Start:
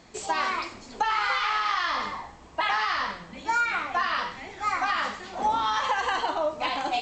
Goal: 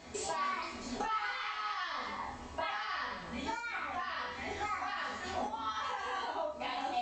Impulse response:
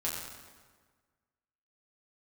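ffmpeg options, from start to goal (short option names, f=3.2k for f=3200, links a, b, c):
-filter_complex "[0:a]acompressor=threshold=-37dB:ratio=12[a];[1:a]atrim=start_sample=2205,atrim=end_sample=3528[b];[a][b]afir=irnorm=-1:irlink=0"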